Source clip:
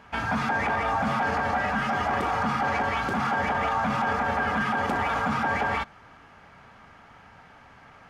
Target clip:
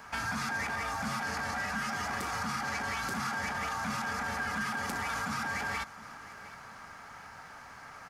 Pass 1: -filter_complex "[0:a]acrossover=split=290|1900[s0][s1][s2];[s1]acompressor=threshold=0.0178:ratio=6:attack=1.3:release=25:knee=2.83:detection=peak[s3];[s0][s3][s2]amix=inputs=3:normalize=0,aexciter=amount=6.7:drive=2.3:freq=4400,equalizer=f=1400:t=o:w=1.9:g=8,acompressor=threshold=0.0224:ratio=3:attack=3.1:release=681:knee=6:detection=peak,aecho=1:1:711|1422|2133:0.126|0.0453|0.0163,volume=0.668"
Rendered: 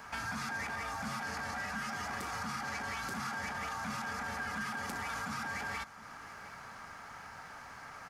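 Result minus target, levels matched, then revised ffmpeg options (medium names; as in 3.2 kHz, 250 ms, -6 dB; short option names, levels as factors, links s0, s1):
compression: peak gain reduction +4.5 dB
-filter_complex "[0:a]acrossover=split=290|1900[s0][s1][s2];[s1]acompressor=threshold=0.0178:ratio=6:attack=1.3:release=25:knee=2.83:detection=peak[s3];[s0][s3][s2]amix=inputs=3:normalize=0,aexciter=amount=6.7:drive=2.3:freq=4400,equalizer=f=1400:t=o:w=1.9:g=8,acompressor=threshold=0.0473:ratio=3:attack=3.1:release=681:knee=6:detection=peak,aecho=1:1:711|1422|2133:0.126|0.0453|0.0163,volume=0.668"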